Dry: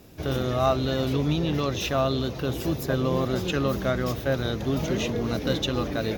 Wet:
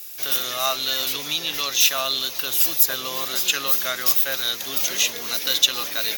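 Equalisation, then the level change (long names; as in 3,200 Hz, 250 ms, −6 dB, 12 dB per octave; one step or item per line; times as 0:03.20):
high-pass filter 80 Hz
RIAA equalisation recording
tilt shelving filter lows −9.5 dB, about 900 Hz
−1.5 dB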